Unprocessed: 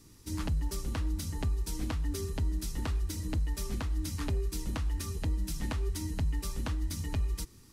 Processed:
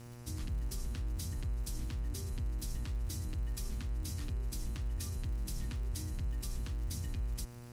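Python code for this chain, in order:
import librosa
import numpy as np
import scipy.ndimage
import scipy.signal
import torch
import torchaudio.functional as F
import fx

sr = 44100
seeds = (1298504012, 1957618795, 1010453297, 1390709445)

p1 = fx.over_compress(x, sr, threshold_db=-37.0, ratio=-1.0)
p2 = x + (p1 * librosa.db_to_amplitude(0.0))
p3 = fx.dmg_crackle(p2, sr, seeds[0], per_s=140.0, level_db=-37.0)
p4 = fx.tone_stack(p3, sr, knobs='6-0-2')
p5 = fx.dmg_buzz(p4, sr, base_hz=120.0, harmonics=25, level_db=-54.0, tilt_db=-7, odd_only=False)
p6 = fx.peak_eq(p5, sr, hz=660.0, db=-4.0, octaves=0.22)
y = p6 * librosa.db_to_amplitude(4.0)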